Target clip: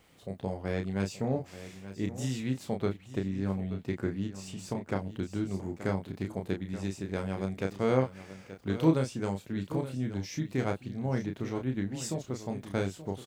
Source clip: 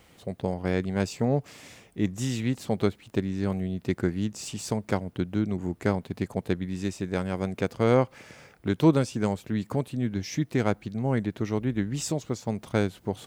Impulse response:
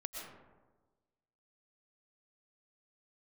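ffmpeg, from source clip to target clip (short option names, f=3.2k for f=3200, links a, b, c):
-filter_complex "[0:a]asplit=2[a][b];[b]adelay=31,volume=-5dB[c];[a][c]amix=inputs=2:normalize=0,aecho=1:1:878:0.211,asplit=3[d][e][f];[d]afade=t=out:st=2.75:d=0.02[g];[e]adynamicequalizer=threshold=0.00282:dfrequency=3400:dqfactor=0.7:tfrequency=3400:tqfactor=0.7:attack=5:release=100:ratio=0.375:range=3:mode=cutabove:tftype=highshelf,afade=t=in:st=2.75:d=0.02,afade=t=out:st=4.96:d=0.02[h];[f]afade=t=in:st=4.96:d=0.02[i];[g][h][i]amix=inputs=3:normalize=0,volume=-6.5dB"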